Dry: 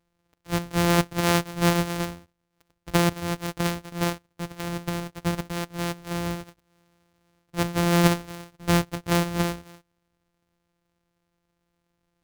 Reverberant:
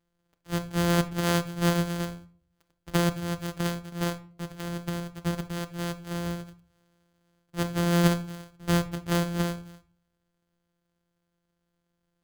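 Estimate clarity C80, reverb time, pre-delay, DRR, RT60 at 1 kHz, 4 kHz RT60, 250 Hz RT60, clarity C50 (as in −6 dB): 21.5 dB, 0.45 s, 5 ms, 8.0 dB, 0.40 s, 0.30 s, 0.65 s, 16.0 dB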